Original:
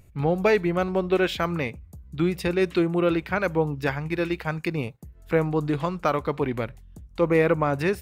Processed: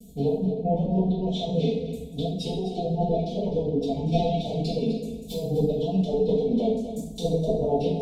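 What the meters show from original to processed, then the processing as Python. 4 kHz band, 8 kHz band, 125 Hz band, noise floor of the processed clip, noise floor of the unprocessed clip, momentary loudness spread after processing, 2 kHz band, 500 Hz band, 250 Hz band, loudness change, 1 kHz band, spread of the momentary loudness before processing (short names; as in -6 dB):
+0.5 dB, n/a, +1.0 dB, -38 dBFS, -50 dBFS, 7 LU, -24.5 dB, -1.0 dB, 0.0 dB, -1.5 dB, -4.0 dB, 10 LU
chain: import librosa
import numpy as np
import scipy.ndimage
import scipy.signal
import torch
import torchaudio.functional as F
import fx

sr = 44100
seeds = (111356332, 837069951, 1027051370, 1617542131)

p1 = fx.lower_of_two(x, sr, delay_ms=4.8)
p2 = fx.highpass(p1, sr, hz=100.0, slope=6)
p3 = fx.peak_eq(p2, sr, hz=970.0, db=-4.0, octaves=2.8)
p4 = 10.0 ** (-24.5 / 20.0) * np.tanh(p3 / 10.0 ** (-24.5 / 20.0))
p5 = p3 + F.gain(torch.from_numpy(p4), -10.0).numpy()
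p6 = fx.env_lowpass_down(p5, sr, base_hz=930.0, full_db=-20.5)
p7 = p6 * (1.0 - 0.7 / 2.0 + 0.7 / 2.0 * np.cos(2.0 * np.pi * 9.6 * (np.arange(len(p6)) / sr)))
p8 = p7 + 0.94 * np.pad(p7, (int(4.3 * sr / 1000.0), 0))[:len(p7)]
p9 = fx.dereverb_blind(p8, sr, rt60_s=0.98)
p10 = fx.over_compress(p9, sr, threshold_db=-31.0, ratio=-0.5)
p11 = scipy.signal.sosfilt(scipy.signal.ellip(3, 1.0, 70, [670.0, 3400.0], 'bandstop', fs=sr, output='sos'), p10)
p12 = p11 + 10.0 ** (-11.0 / 20.0) * np.pad(p11, (int(253 * sr / 1000.0), 0))[:len(p11)]
y = fx.rev_double_slope(p12, sr, seeds[0], early_s=0.61, late_s=3.0, knee_db=-22, drr_db=-9.0)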